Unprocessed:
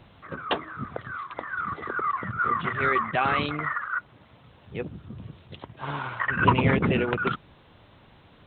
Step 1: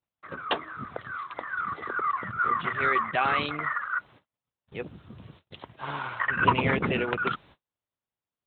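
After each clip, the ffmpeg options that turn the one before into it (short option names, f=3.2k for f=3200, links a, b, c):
-af "lowshelf=f=340:g=-7.5,agate=range=-39dB:threshold=-51dB:ratio=16:detection=peak"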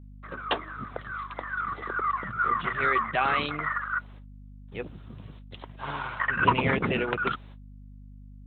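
-af "aeval=exprs='val(0)+0.00562*(sin(2*PI*50*n/s)+sin(2*PI*2*50*n/s)/2+sin(2*PI*3*50*n/s)/3+sin(2*PI*4*50*n/s)/4+sin(2*PI*5*50*n/s)/5)':c=same"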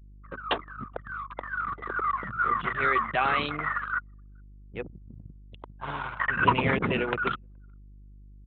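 -af "aecho=1:1:423|846:0.0631|0.0126,anlmdn=2.51"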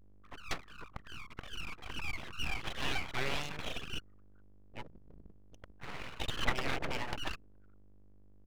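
-af "aeval=exprs='abs(val(0))':c=same,volume=-7.5dB"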